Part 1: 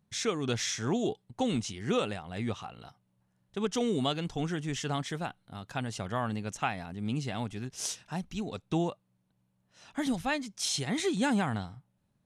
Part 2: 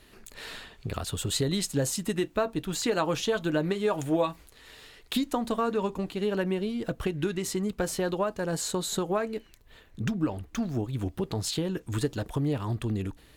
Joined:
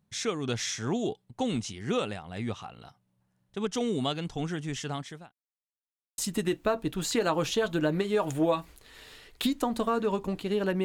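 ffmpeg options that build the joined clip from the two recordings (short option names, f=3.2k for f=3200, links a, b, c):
-filter_complex "[0:a]apad=whole_dur=10.84,atrim=end=10.84,asplit=2[a][b];[a]atrim=end=5.33,asetpts=PTS-STARTPTS,afade=t=out:st=4.63:d=0.7:c=qsin[c];[b]atrim=start=5.33:end=6.18,asetpts=PTS-STARTPTS,volume=0[d];[1:a]atrim=start=1.89:end=6.55,asetpts=PTS-STARTPTS,afade=t=in:d=0.004:c=hsin[e];[c][d][e]concat=n=3:v=0:a=1"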